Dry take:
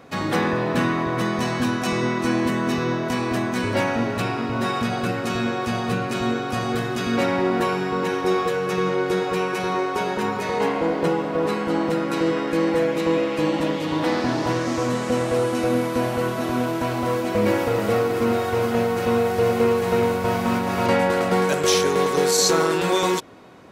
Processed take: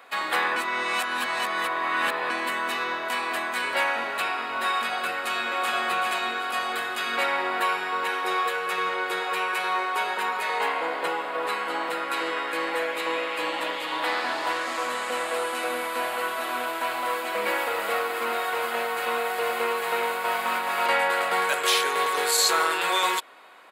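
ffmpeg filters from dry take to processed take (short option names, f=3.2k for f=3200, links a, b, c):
-filter_complex "[0:a]asplit=2[a][b];[b]afade=t=in:st=5.13:d=0.01,afade=t=out:st=5.8:d=0.01,aecho=0:1:380|760|1140|1520|1900:0.794328|0.278015|0.0973052|0.0340568|0.0119199[c];[a][c]amix=inputs=2:normalize=0,asplit=3[d][e][f];[d]atrim=end=0.562[g];[e]atrim=start=0.558:end=2.302,asetpts=PTS-STARTPTS,areverse[h];[f]atrim=start=2.298[i];[g][h]acrossfade=d=0.004:c1=hsin:c2=hsin[j];[j][i]acrossfade=d=0.004:c1=hsin:c2=hsin,highpass=990,equalizer=f=5.8k:t=o:w=0.43:g=-14.5,acontrast=39,volume=-2dB"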